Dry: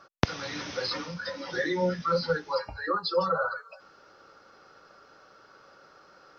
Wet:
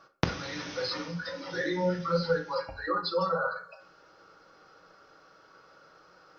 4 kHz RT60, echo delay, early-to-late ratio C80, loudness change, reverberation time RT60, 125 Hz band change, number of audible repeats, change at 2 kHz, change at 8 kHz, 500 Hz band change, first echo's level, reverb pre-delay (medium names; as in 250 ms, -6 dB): 0.35 s, no echo, 16.5 dB, -1.5 dB, 0.50 s, +0.5 dB, no echo, -1.5 dB, no reading, -1.5 dB, no echo, 6 ms